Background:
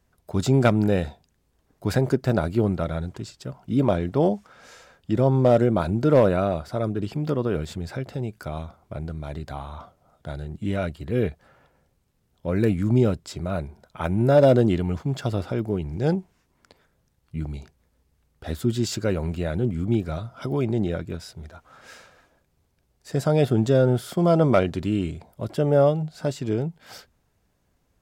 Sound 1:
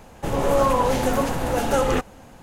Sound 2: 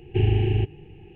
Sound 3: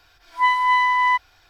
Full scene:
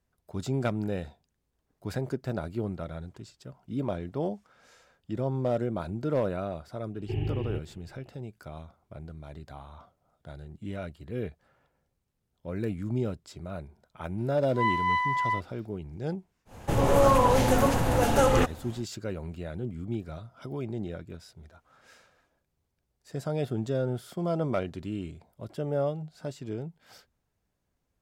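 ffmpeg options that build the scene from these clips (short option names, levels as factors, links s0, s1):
-filter_complex "[0:a]volume=0.299[s0];[3:a]asplit=2[s1][s2];[s2]adelay=46,volume=0.708[s3];[s1][s3]amix=inputs=2:normalize=0[s4];[1:a]equalizer=f=100:w=2:g=8[s5];[2:a]atrim=end=1.15,asetpts=PTS-STARTPTS,volume=0.282,afade=t=in:d=0.004:c=hsin,afade=t=out:st=1.146:d=0.004:c=hsin,adelay=6940[s6];[s4]atrim=end=1.49,asetpts=PTS-STARTPTS,volume=0.224,afade=t=in:d=0.004:c=hsin,afade=t=out:st=1.486:d=0.004:c=hsin,adelay=14180[s7];[s5]atrim=end=2.42,asetpts=PTS-STARTPTS,volume=0.841,afade=t=in:d=0.1,afade=t=out:st=2.32:d=0.1,adelay=16450[s8];[s0][s6][s7][s8]amix=inputs=4:normalize=0"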